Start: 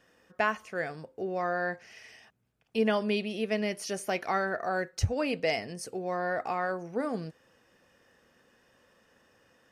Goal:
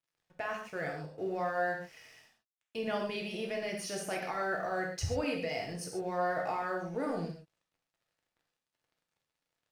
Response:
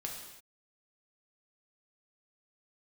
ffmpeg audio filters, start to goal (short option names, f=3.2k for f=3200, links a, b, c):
-filter_complex "[0:a]alimiter=limit=-24dB:level=0:latency=1:release=25,aeval=exprs='sgn(val(0))*max(abs(val(0))-0.00126,0)':c=same[a];[1:a]atrim=start_sample=2205,atrim=end_sample=6615[b];[a][b]afir=irnorm=-1:irlink=0"